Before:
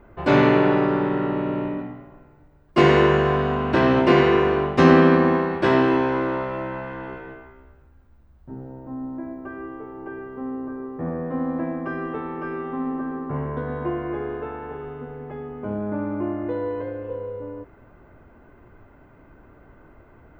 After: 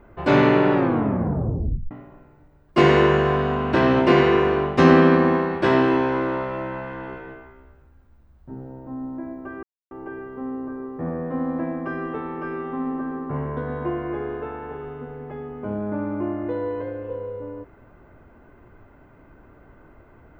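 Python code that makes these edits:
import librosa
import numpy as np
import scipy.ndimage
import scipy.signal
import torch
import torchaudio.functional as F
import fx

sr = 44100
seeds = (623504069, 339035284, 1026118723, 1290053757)

y = fx.edit(x, sr, fx.tape_stop(start_s=0.73, length_s=1.18),
    fx.silence(start_s=9.63, length_s=0.28), tone=tone)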